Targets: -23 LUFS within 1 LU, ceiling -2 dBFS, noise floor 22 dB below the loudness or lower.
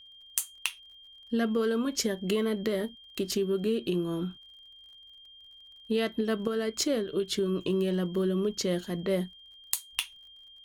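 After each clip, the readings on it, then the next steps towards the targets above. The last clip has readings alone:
tick rate 34 per s; steady tone 3.2 kHz; tone level -50 dBFS; loudness -30.5 LUFS; peak level -10.5 dBFS; loudness target -23.0 LUFS
-> de-click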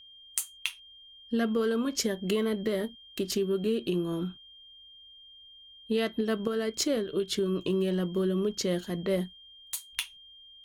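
tick rate 0.75 per s; steady tone 3.2 kHz; tone level -50 dBFS
-> band-stop 3.2 kHz, Q 30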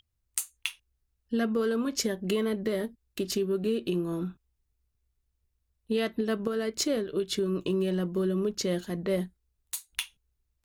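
steady tone not found; loudness -30.5 LUFS; peak level -11.0 dBFS; loudness target -23.0 LUFS
-> trim +7.5 dB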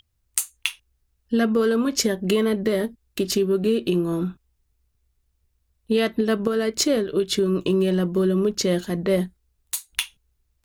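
loudness -23.0 LUFS; peak level -3.5 dBFS; noise floor -72 dBFS

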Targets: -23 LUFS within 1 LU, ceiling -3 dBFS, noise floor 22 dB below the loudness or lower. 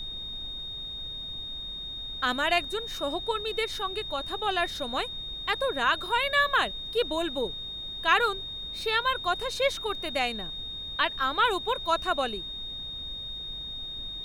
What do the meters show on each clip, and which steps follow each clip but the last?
steady tone 3.7 kHz; tone level -35 dBFS; noise floor -38 dBFS; noise floor target -51 dBFS; loudness -29.0 LUFS; peak level -8.5 dBFS; loudness target -23.0 LUFS
-> band-stop 3.7 kHz, Q 30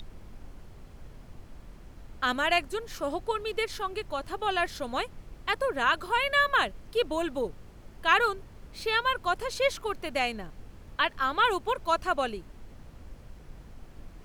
steady tone not found; noise floor -50 dBFS; noise floor target -51 dBFS
-> noise print and reduce 6 dB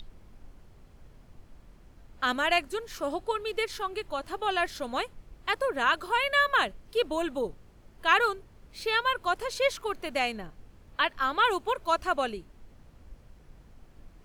noise floor -56 dBFS; loudness -28.5 LUFS; peak level -9.0 dBFS; loudness target -23.0 LUFS
-> trim +5.5 dB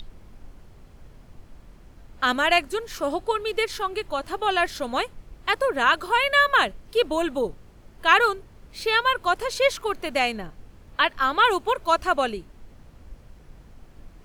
loudness -23.0 LUFS; peak level -3.5 dBFS; noise floor -50 dBFS

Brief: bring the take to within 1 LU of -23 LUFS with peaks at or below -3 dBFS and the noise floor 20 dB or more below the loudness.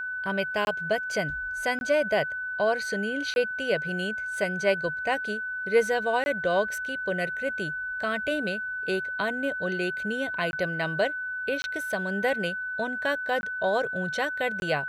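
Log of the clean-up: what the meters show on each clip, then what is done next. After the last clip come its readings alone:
dropouts 8; longest dropout 21 ms; steady tone 1.5 kHz; tone level -30 dBFS; loudness -27.5 LUFS; peak level -10.5 dBFS; loudness target -23.0 LUFS
-> interpolate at 0.65/1.79/3.34/6.24/10.51/11.62/13.41/14.60 s, 21 ms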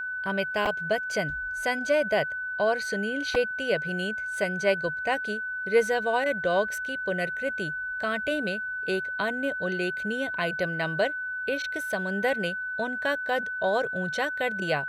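dropouts 0; steady tone 1.5 kHz; tone level -30 dBFS
-> band-stop 1.5 kHz, Q 30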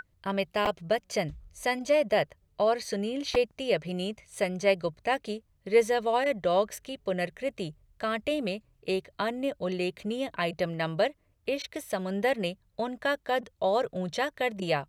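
steady tone not found; loudness -30.0 LUFS; peak level -11.0 dBFS; loudness target -23.0 LUFS
-> trim +7 dB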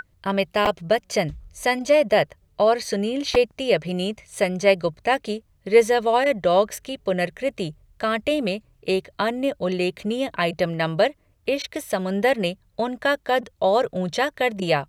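loudness -23.0 LUFS; peak level -4.0 dBFS; noise floor -62 dBFS

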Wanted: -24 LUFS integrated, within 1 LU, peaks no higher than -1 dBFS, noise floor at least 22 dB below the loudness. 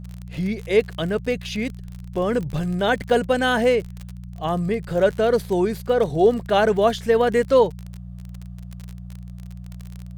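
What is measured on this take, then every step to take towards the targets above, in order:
tick rate 41 per s; hum 60 Hz; highest harmonic 180 Hz; hum level -33 dBFS; loudness -21.0 LUFS; peak level -5.0 dBFS; loudness target -24.0 LUFS
-> de-click; de-hum 60 Hz, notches 3; trim -3 dB

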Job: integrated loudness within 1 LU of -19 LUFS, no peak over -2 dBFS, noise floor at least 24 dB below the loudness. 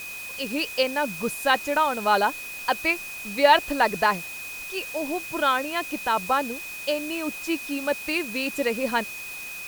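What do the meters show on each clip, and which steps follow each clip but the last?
steady tone 2.5 kHz; tone level -35 dBFS; noise floor -36 dBFS; noise floor target -49 dBFS; loudness -25.0 LUFS; peak level -5.0 dBFS; loudness target -19.0 LUFS
-> band-stop 2.5 kHz, Q 30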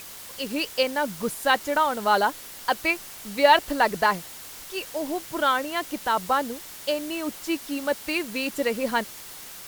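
steady tone not found; noise floor -42 dBFS; noise floor target -49 dBFS
-> noise print and reduce 7 dB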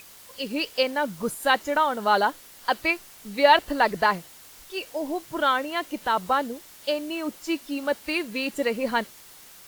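noise floor -48 dBFS; noise floor target -50 dBFS
-> noise print and reduce 6 dB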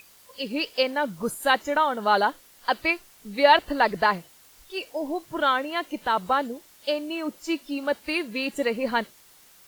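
noise floor -54 dBFS; loudness -25.5 LUFS; peak level -4.5 dBFS; loudness target -19.0 LUFS
-> trim +6.5 dB; peak limiter -2 dBFS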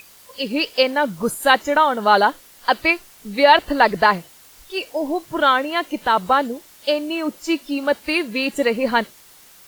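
loudness -19.0 LUFS; peak level -2.0 dBFS; noise floor -48 dBFS

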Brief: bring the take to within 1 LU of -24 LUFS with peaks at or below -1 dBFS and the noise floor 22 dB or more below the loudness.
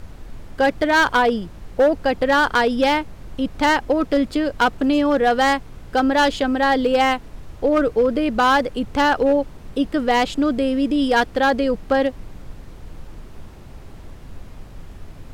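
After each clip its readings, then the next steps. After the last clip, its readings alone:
clipped samples 1.1%; clipping level -10.5 dBFS; noise floor -40 dBFS; noise floor target -41 dBFS; loudness -19.0 LUFS; peak level -10.5 dBFS; loudness target -24.0 LUFS
-> clip repair -10.5 dBFS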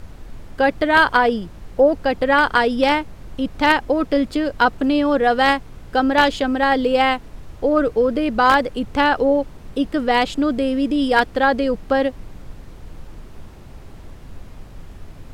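clipped samples 0.0%; noise floor -40 dBFS; noise floor target -41 dBFS
-> noise print and reduce 6 dB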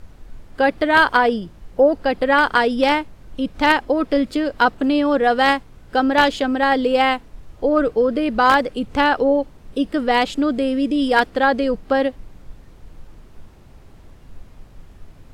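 noise floor -46 dBFS; loudness -18.5 LUFS; peak level -1.5 dBFS; loudness target -24.0 LUFS
-> trim -5.5 dB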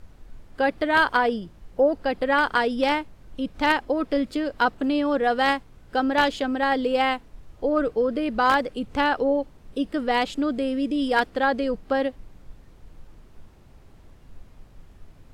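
loudness -24.0 LUFS; peak level -7.0 dBFS; noise floor -51 dBFS

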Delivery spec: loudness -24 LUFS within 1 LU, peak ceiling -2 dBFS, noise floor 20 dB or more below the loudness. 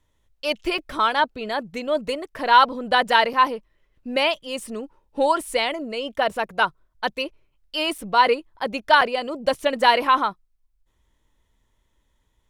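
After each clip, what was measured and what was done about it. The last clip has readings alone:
dropouts 4; longest dropout 4.4 ms; loudness -22.0 LUFS; peak level -3.5 dBFS; loudness target -24.0 LUFS
-> interpolate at 0.78/3.33/7.98/9.01 s, 4.4 ms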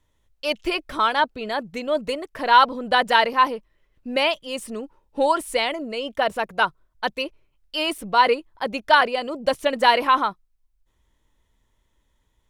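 dropouts 0; loudness -22.0 LUFS; peak level -3.5 dBFS; loudness target -24.0 LUFS
-> trim -2 dB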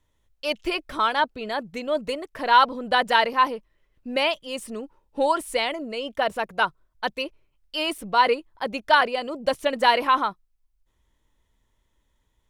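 loudness -24.0 LUFS; peak level -5.5 dBFS; noise floor -71 dBFS

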